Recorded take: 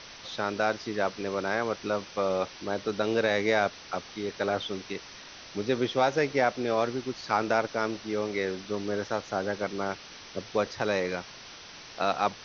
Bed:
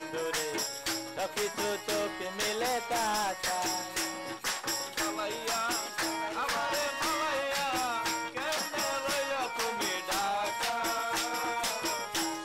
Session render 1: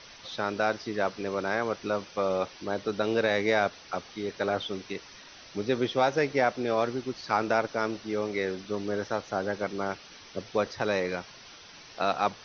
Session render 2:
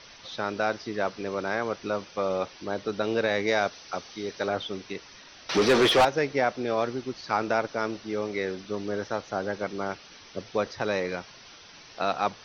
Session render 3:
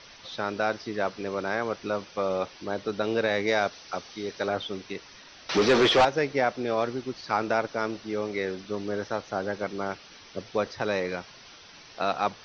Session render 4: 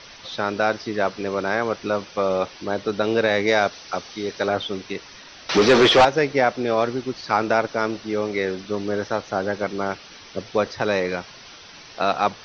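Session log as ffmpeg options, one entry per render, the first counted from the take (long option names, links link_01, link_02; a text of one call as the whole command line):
ffmpeg -i in.wav -af "afftdn=noise_reduction=6:noise_floor=-47" out.wav
ffmpeg -i in.wav -filter_complex "[0:a]asettb=1/sr,asplit=3[link_01][link_02][link_03];[link_01]atrim=end=3.474[link_04];[link_02]atrim=start=3.47:end=4.48,asetpts=PTS-STARTPTS,afade=type=in:duration=0.004:curve=qsin,afade=type=out:start_time=1.006:duration=0.004:curve=qsin,bass=frequency=250:gain=-2,treble=frequency=4000:gain=6[link_05];[link_03]atrim=start=4.476[link_06];[link_04][link_05]acrossfade=duration=0.004:curve1=hsin:curve2=qsin[link_07];[link_07][link_06]acrossfade=duration=0.004:curve1=qsin:curve2=hsin,asettb=1/sr,asplit=3[link_08][link_09][link_10];[link_08]atrim=end=5.494[link_11];[link_09]atrim=start=5.49:end=6.05,asetpts=PTS-STARTPTS,afade=type=in:duration=0.004:curve=qsin,afade=type=out:start_time=0.556:duration=0.004:curve=qsin,asplit=2[link_12][link_13];[link_13]highpass=frequency=720:poles=1,volume=30dB,asoftclip=type=tanh:threshold=-11.5dB[link_14];[link_12][link_14]amix=inputs=2:normalize=0,lowpass=frequency=3200:poles=1,volume=-6dB[link_15];[link_10]atrim=start=6.046[link_16];[link_11][link_15]acrossfade=duration=0.004:curve1=hsin:curve2=qsin[link_17];[link_17][link_16]acrossfade=duration=0.004:curve1=qsin:curve2=hsin" out.wav
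ffmpeg -i in.wav -af "lowpass=frequency=6700:width=0.5412,lowpass=frequency=6700:width=1.3066" out.wav
ffmpeg -i in.wav -af "volume=6dB" out.wav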